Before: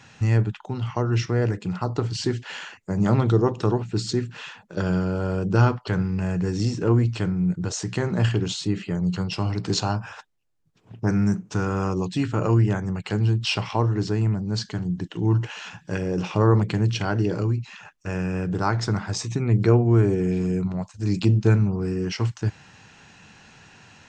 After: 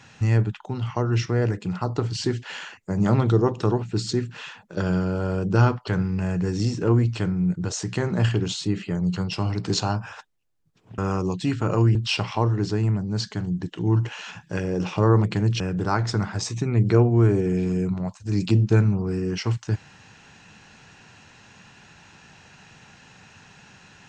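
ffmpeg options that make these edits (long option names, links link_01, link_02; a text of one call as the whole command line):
ffmpeg -i in.wav -filter_complex "[0:a]asplit=4[link_01][link_02][link_03][link_04];[link_01]atrim=end=10.982[link_05];[link_02]atrim=start=11.698:end=12.672[link_06];[link_03]atrim=start=13.328:end=16.982[link_07];[link_04]atrim=start=18.338[link_08];[link_05][link_06]acrossfade=duration=0.004:curve1=hsin:curve2=hsin[link_09];[link_09][link_07]acrossfade=duration=0.004:curve1=hsin:curve2=hsin[link_10];[link_10][link_08]acrossfade=duration=0.004:curve1=hsin:curve2=hsin" out.wav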